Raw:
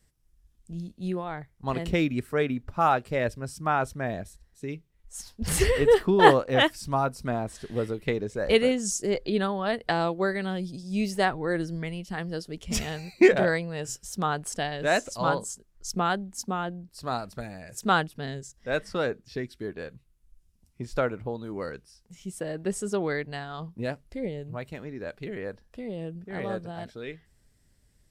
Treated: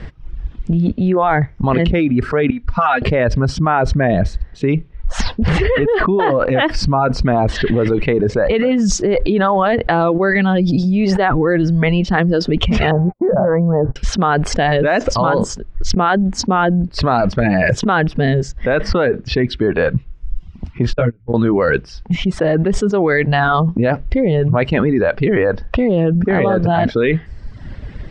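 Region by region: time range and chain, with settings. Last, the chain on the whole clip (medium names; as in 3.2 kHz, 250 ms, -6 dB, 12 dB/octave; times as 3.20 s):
2.50–3.02 s: amplifier tone stack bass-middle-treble 5-5-5 + comb 4.2 ms, depth 69% + compression, threshold -44 dBFS
12.91–13.96 s: inverse Chebyshev low-pass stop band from 2.8 kHz, stop band 50 dB + gate -48 dBFS, range -42 dB
20.93–21.34 s: gate -30 dBFS, range -24 dB + amplifier tone stack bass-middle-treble 10-0-1 + doubling 17 ms -2.5 dB
whole clip: Bessel low-pass 2.2 kHz, order 4; reverb removal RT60 0.77 s; level flattener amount 100%; trim -2.5 dB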